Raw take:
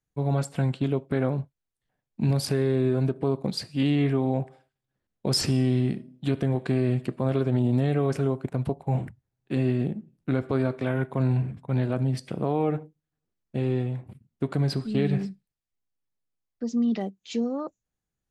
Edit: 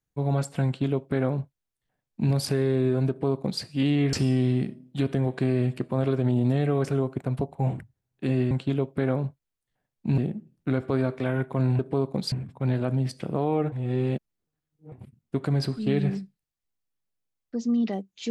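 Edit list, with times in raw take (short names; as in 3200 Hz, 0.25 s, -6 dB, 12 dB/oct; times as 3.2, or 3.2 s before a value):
0.65–2.32 copy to 9.79
3.09–3.62 copy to 11.4
4.13–5.41 cut
12.8–14 reverse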